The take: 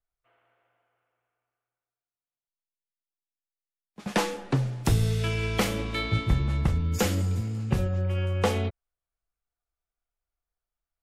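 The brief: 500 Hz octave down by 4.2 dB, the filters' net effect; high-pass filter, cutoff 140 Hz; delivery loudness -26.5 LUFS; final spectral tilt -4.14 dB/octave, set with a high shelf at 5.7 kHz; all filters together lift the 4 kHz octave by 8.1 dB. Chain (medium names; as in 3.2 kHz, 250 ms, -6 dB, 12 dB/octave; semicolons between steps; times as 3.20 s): high-pass 140 Hz; peaking EQ 500 Hz -5 dB; peaking EQ 4 kHz +8 dB; treble shelf 5.7 kHz +6.5 dB; trim +1.5 dB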